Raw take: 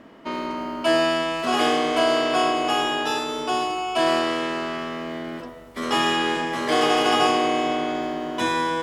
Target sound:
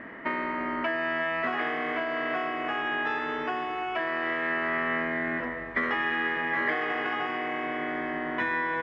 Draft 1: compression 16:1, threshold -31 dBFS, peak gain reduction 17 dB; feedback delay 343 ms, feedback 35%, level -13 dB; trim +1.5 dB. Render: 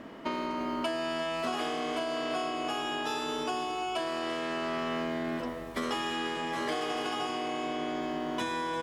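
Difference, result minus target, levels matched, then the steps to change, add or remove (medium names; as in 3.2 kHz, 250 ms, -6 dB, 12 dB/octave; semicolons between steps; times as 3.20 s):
2 kHz band -7.0 dB
add after compression: resonant low-pass 1.9 kHz, resonance Q 6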